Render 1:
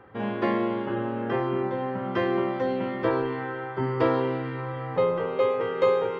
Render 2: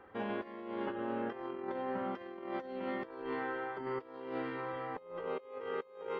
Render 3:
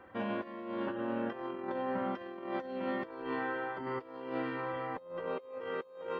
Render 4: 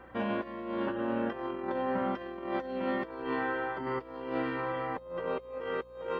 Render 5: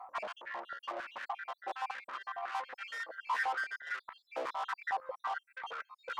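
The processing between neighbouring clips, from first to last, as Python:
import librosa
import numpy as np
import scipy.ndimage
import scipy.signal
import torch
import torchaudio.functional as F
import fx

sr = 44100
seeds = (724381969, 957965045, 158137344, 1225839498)

y1 = fx.peak_eq(x, sr, hz=130.0, db=-15.0, octaves=0.73)
y1 = fx.over_compress(y1, sr, threshold_db=-31.0, ratio=-0.5)
y1 = y1 * 10.0 ** (-8.5 / 20.0)
y2 = fx.notch_comb(y1, sr, f0_hz=420.0)
y2 = y2 * 10.0 ** (3.5 / 20.0)
y3 = fx.add_hum(y2, sr, base_hz=60, snr_db=27)
y3 = y3 * 10.0 ** (3.5 / 20.0)
y4 = fx.spec_dropout(y3, sr, seeds[0], share_pct=70)
y4 = fx.tube_stage(y4, sr, drive_db=44.0, bias=0.4)
y4 = fx.filter_held_highpass(y4, sr, hz=11.0, low_hz=590.0, high_hz=1700.0)
y4 = y4 * 10.0 ** (5.0 / 20.0)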